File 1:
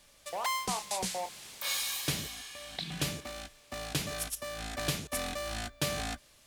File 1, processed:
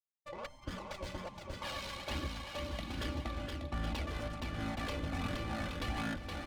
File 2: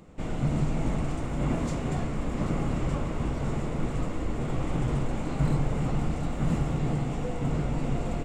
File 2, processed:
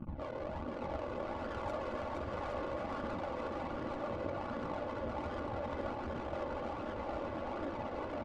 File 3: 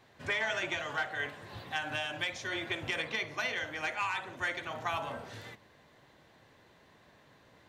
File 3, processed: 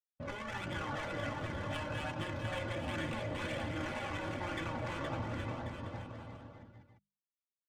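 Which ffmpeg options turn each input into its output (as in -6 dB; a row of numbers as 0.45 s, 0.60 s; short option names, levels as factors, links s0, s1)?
-filter_complex "[0:a]asplit=2[s0][s1];[s1]alimiter=limit=0.0668:level=0:latency=1:release=147,volume=0.944[s2];[s0][s2]amix=inputs=2:normalize=0,acrusher=bits=6:mix=0:aa=0.000001,equalizer=f=1700:w=6.1:g=-5,asoftclip=type=tanh:threshold=0.0501,afftfilt=real='re*lt(hypot(re,im),0.0794)':imag='im*lt(hypot(re,im),0.0794)':win_size=1024:overlap=0.75,afftdn=nr=17:nf=-49,adynamicsmooth=sensitivity=6:basefreq=570,flanger=delay=0.6:depth=1.4:regen=35:speed=1.3:shape=sinusoidal,equalizer=f=110:w=0.6:g=11,bandreject=f=50:t=h:w=6,bandreject=f=100:t=h:w=6,bandreject=f=150:t=h:w=6,bandreject=f=200:t=h:w=6,aecho=1:1:3.5:0.51,asplit=2[s3][s4];[s4]aecho=0:1:470|822.5|1087|1285|1434:0.631|0.398|0.251|0.158|0.1[s5];[s3][s5]amix=inputs=2:normalize=0,volume=1.12"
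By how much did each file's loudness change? -5.5 LU, -10.0 LU, -4.5 LU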